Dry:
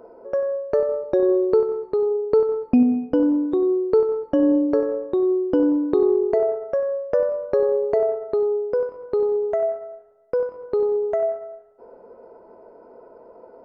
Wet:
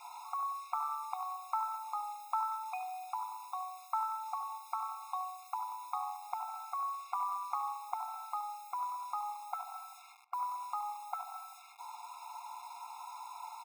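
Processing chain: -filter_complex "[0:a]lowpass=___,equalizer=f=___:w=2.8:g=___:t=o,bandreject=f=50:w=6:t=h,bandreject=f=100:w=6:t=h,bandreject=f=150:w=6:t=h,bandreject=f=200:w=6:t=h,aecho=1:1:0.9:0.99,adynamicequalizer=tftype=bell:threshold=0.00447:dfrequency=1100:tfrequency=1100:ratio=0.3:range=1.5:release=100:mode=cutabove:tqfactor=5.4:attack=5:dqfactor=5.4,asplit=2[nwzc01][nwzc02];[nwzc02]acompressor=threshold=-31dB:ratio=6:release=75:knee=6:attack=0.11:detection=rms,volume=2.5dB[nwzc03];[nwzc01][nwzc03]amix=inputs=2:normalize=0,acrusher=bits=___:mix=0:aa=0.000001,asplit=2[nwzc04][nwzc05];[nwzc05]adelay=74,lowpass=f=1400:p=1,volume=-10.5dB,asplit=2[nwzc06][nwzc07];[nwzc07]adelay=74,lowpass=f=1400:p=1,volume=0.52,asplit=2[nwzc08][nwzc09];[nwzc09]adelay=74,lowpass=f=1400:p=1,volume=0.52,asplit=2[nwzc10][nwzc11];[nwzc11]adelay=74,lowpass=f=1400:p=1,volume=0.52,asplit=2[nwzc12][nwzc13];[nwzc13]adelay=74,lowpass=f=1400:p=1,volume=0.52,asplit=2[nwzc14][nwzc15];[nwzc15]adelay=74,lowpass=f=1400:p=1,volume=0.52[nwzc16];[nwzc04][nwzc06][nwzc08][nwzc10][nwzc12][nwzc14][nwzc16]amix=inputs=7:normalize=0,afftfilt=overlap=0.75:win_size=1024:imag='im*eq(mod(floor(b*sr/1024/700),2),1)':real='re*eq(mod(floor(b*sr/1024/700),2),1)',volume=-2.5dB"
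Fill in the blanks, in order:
2100, 78, 5.5, 7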